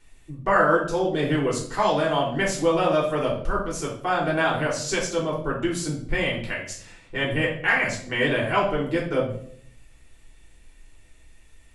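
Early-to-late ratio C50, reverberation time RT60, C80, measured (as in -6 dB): 6.0 dB, 0.60 s, 10.5 dB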